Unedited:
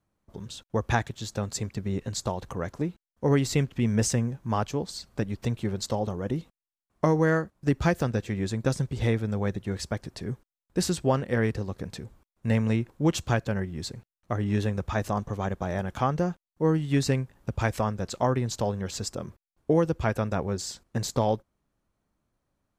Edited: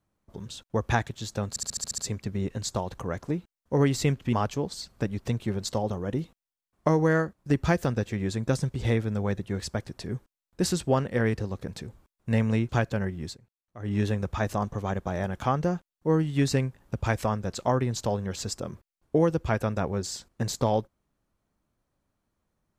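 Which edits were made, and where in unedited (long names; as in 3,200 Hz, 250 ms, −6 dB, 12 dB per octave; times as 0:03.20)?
0:01.49: stutter 0.07 s, 8 plays
0:03.84–0:04.50: remove
0:12.86–0:13.24: remove
0:13.79–0:14.47: duck −16 dB, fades 0.14 s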